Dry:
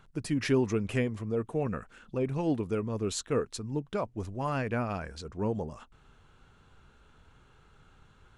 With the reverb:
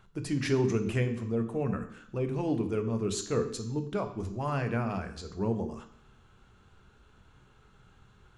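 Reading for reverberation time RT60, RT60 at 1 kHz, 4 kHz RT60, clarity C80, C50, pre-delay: 0.70 s, 0.70 s, 0.70 s, 13.5 dB, 11.0 dB, 3 ms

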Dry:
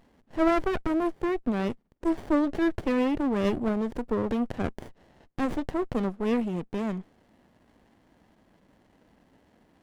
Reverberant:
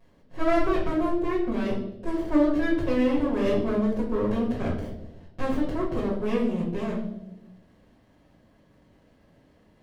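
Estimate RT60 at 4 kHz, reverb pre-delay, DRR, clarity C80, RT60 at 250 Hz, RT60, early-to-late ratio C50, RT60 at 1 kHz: 0.70 s, 5 ms, −11.0 dB, 8.5 dB, 1.3 s, 0.95 s, 4.0 dB, 0.75 s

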